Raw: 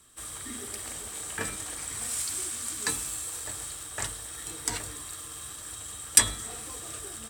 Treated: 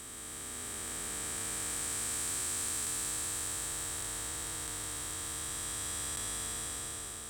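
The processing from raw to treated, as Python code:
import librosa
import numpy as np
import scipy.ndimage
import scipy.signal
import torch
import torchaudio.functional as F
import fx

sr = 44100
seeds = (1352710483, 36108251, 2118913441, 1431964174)

y = fx.spec_blur(x, sr, span_ms=1450.0)
y = F.gain(torch.from_numpy(y), 1.0).numpy()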